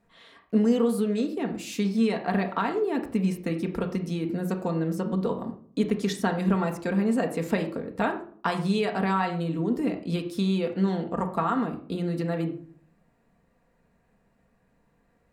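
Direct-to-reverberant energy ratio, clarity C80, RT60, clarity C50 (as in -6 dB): 3.0 dB, 14.5 dB, 0.55 s, 10.5 dB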